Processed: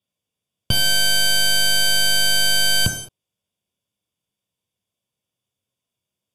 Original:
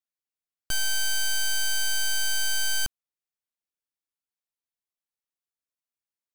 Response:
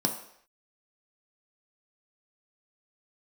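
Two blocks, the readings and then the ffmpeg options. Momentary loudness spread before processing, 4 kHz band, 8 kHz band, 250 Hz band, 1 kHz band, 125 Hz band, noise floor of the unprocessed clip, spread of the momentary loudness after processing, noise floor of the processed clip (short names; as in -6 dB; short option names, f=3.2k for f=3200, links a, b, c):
4 LU, +12.5 dB, +6.0 dB, +20.5 dB, +11.0 dB, +18.0 dB, under -85 dBFS, 5 LU, -85 dBFS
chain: -filter_complex "[0:a]lowshelf=f=400:g=3.5[a];[1:a]atrim=start_sample=2205,atrim=end_sample=6174,asetrate=27342,aresample=44100[b];[a][b]afir=irnorm=-1:irlink=0"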